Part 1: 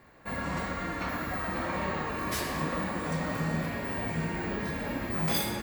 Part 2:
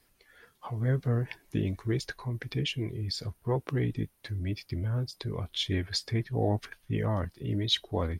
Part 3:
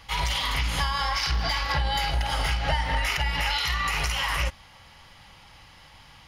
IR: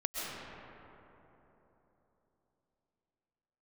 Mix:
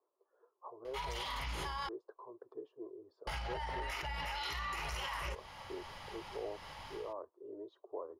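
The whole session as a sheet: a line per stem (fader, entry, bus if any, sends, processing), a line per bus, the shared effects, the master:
muted
−4.5 dB, 0.00 s, no send, elliptic band-pass filter 370–1,100 Hz, stop band 40 dB
−11.0 dB, 0.85 s, muted 0:01.89–0:03.27, no send, parametric band 760 Hz +11 dB 1.2 octaves; automatic gain control gain up to 10 dB; brickwall limiter −12.5 dBFS, peak gain reduction 10.5 dB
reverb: not used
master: parametric band 760 Hz −7.5 dB 0.27 octaves; downward compressor 2.5 to 1, threshold −40 dBFS, peak gain reduction 8.5 dB

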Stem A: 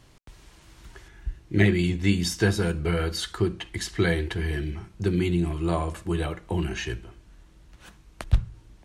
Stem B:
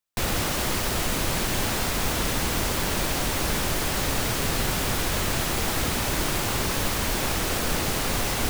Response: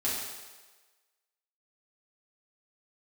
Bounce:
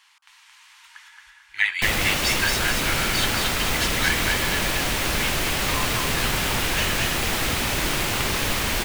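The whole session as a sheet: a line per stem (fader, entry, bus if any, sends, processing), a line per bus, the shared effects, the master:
+2.0 dB, 0.00 s, no send, echo send −3 dB, elliptic high-pass filter 880 Hz, stop band 40 dB
+0.5 dB, 1.65 s, no send, no echo send, no processing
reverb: not used
echo: repeating echo 223 ms, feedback 44%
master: parametric band 2,500 Hz +5.5 dB 1.5 octaves; hum removal 90.44 Hz, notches 17

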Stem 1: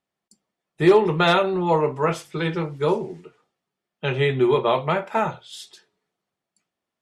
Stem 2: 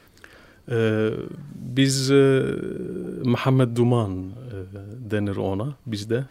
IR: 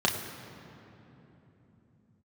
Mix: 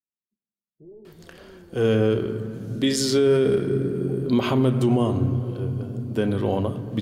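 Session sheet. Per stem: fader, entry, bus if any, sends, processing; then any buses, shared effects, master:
−19.5 dB, 0.00 s, send −21.5 dB, soft clipping −19 dBFS, distortion −9 dB; Gaussian smoothing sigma 20 samples
−0.5 dB, 1.05 s, send −16.5 dB, no processing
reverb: on, RT60 3.4 s, pre-delay 3 ms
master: brickwall limiter −11 dBFS, peak gain reduction 7.5 dB

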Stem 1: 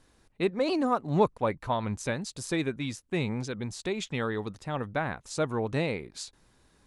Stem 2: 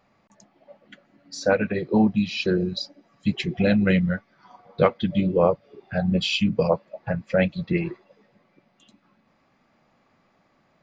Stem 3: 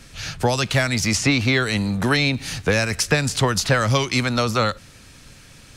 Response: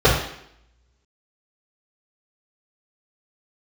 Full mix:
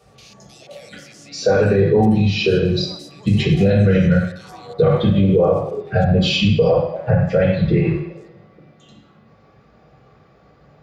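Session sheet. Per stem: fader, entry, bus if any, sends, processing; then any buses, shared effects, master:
−4.0 dB, 2.00 s, bus A, no send, adaptive Wiener filter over 15 samples
−4.5 dB, 0.00 s, no bus, send −10 dB, downward compressor 4 to 1, threshold −21 dBFS, peak gain reduction 8 dB; high-shelf EQ 4,300 Hz +6 dB
−2.5 dB, 0.00 s, bus A, no send, Butterworth high-pass 2,300 Hz 36 dB per octave; micro pitch shift up and down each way 38 cents
bus A: 0.0 dB, output level in coarse steps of 22 dB; brickwall limiter −36 dBFS, peak gain reduction 6.5 dB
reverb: on, RT60 0.70 s, pre-delay 3 ms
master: brickwall limiter −6.5 dBFS, peak gain reduction 9 dB

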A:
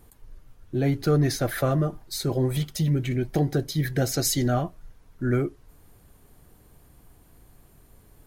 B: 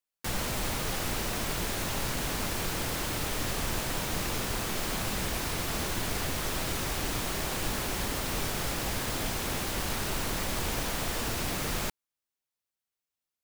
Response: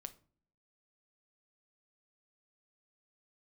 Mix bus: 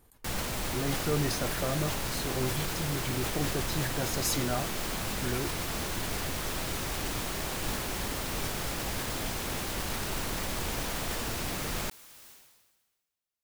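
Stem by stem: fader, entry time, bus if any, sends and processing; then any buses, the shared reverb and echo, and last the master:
−5.0 dB, 0.00 s, no send, low-shelf EQ 320 Hz −5.5 dB; amplitude tremolo 1.6 Hz, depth 28%
−2.0 dB, 0.00 s, no send, no processing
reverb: not used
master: level that may fall only so fast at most 44 dB per second

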